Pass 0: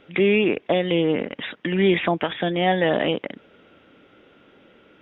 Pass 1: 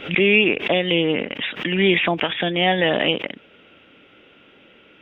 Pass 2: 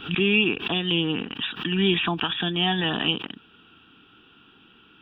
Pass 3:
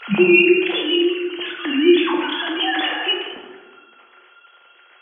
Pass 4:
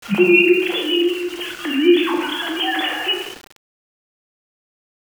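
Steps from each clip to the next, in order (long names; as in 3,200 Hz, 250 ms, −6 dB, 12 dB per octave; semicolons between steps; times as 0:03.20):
parametric band 2,700 Hz +9.5 dB 0.82 octaves; background raised ahead of every attack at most 130 dB per second
phaser with its sweep stopped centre 2,100 Hz, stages 6
three sine waves on the formant tracks; dense smooth reverb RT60 1.4 s, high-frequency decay 0.5×, DRR −1 dB; level +3 dB
centre clipping without the shift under −31.5 dBFS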